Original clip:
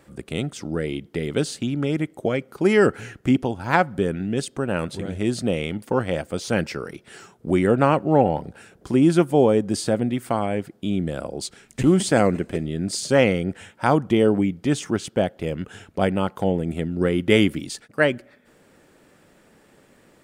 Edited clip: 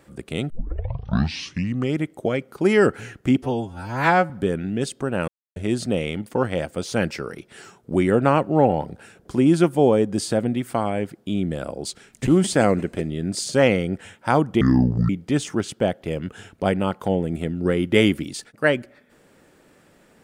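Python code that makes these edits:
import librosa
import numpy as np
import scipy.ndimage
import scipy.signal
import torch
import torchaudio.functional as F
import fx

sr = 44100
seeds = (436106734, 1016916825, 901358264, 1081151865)

y = fx.edit(x, sr, fx.tape_start(start_s=0.5, length_s=1.46),
    fx.stretch_span(start_s=3.42, length_s=0.44, factor=2.0),
    fx.silence(start_s=4.84, length_s=0.28),
    fx.speed_span(start_s=14.17, length_s=0.28, speed=0.58), tone=tone)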